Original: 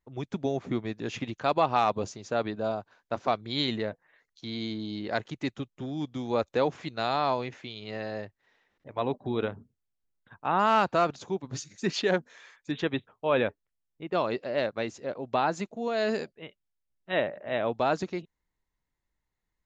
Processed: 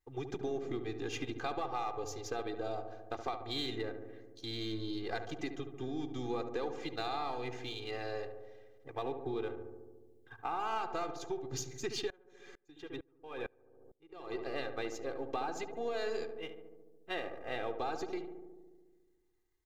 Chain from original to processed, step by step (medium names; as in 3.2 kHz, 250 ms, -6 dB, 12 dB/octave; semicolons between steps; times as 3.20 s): partial rectifier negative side -3 dB; treble shelf 5.9 kHz +5.5 dB; hum notches 50/100 Hz; comb 2.5 ms, depth 88%; compression 6:1, threshold -32 dBFS, peak gain reduction 14 dB; filtered feedback delay 72 ms, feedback 78%, low-pass 1.3 kHz, level -7.5 dB; 12.10–14.35 s: sawtooth tremolo in dB swelling 2.2 Hz, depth 29 dB; trim -3 dB